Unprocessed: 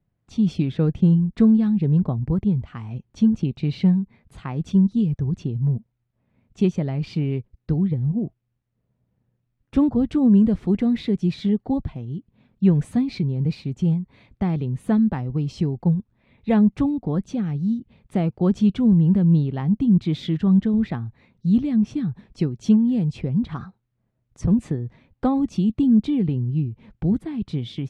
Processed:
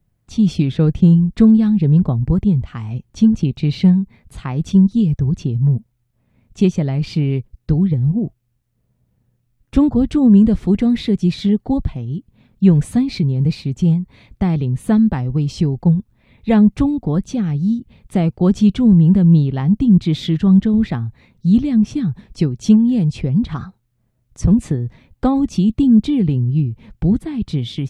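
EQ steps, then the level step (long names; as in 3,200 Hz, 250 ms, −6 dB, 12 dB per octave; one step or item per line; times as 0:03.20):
low-shelf EQ 84 Hz +9.5 dB
high-shelf EQ 4,200 Hz +9.5 dB
+4.0 dB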